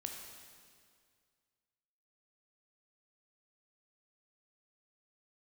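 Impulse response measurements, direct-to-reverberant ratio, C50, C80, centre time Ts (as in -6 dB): 1.5 dB, 3.5 dB, 5.0 dB, 63 ms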